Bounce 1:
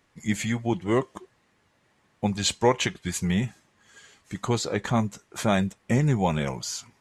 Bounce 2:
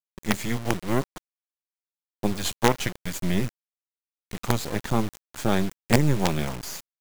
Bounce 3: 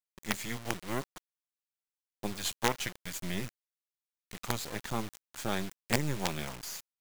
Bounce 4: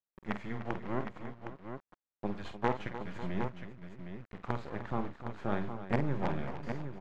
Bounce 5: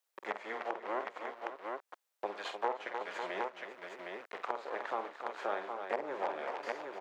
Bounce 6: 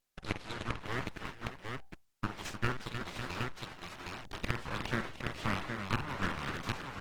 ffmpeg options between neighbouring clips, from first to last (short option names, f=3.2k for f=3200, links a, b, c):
-filter_complex "[0:a]acrossover=split=250|1200[a][b][c];[a]acontrast=43[d];[d][b][c]amix=inputs=3:normalize=0,acrusher=bits=3:dc=4:mix=0:aa=0.000001"
-af "tiltshelf=f=830:g=-4,volume=-8.5dB"
-af "lowpass=1.4k,aecho=1:1:49|301|548|762:0.335|0.237|0.168|0.398"
-filter_complex "[0:a]highpass=f=450:w=0.5412,highpass=f=450:w=1.3066,acrossover=split=1200[a][b];[b]alimiter=level_in=8.5dB:limit=-24dB:level=0:latency=1:release=329,volume=-8.5dB[c];[a][c]amix=inputs=2:normalize=0,acompressor=threshold=-51dB:ratio=2,volume=11.5dB"
-af "bandreject=f=60:t=h:w=6,bandreject=f=120:t=h:w=6,bandreject=f=180:t=h:w=6,bandreject=f=240:t=h:w=6,bandreject=f=300:t=h:w=6,bandreject=f=360:t=h:w=6,bandreject=f=420:t=h:w=6,aeval=exprs='abs(val(0))':c=same,volume=5dB" -ar 48000 -c:a libopus -b:a 16k